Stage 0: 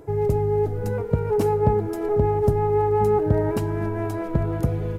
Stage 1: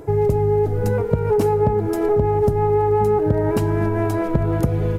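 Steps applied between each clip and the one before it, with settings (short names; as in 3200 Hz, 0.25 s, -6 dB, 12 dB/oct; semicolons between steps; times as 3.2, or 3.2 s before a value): compressor, threshold -21 dBFS, peak gain reduction 8.5 dB; gain +7 dB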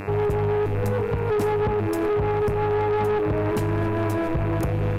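buzz 100 Hz, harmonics 27, -34 dBFS -3 dB/oct; soft clip -19 dBFS, distortion -11 dB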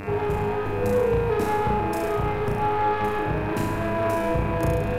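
flutter echo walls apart 5.9 m, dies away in 0.91 s; gain -2 dB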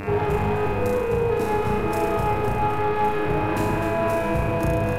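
echo with dull and thin repeats by turns 0.128 s, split 830 Hz, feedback 79%, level -5 dB; vocal rider 0.5 s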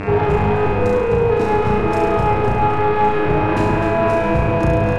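air absorption 85 m; gain +6.5 dB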